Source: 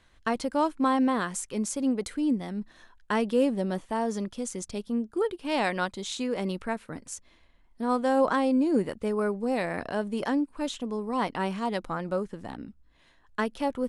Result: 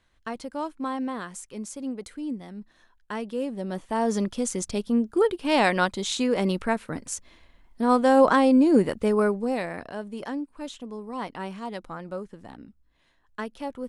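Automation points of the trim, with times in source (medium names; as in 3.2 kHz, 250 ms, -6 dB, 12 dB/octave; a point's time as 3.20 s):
3.47 s -6 dB
4.14 s +6 dB
9.20 s +6 dB
9.88 s -5 dB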